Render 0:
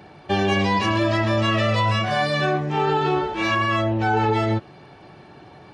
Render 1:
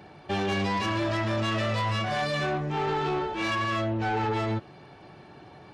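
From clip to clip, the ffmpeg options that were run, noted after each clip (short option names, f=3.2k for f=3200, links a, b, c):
-af "asoftclip=type=tanh:threshold=-19.5dB,volume=-3.5dB"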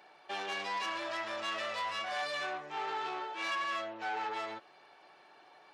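-af "highpass=680,volume=-5.5dB"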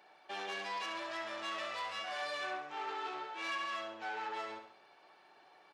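-af "bandreject=f=50:t=h:w=6,bandreject=f=100:t=h:w=6,bandreject=f=150:t=h:w=6,aecho=1:1:67|134|201|268|335:0.398|0.183|0.0842|0.0388|0.0178,volume=-4dB"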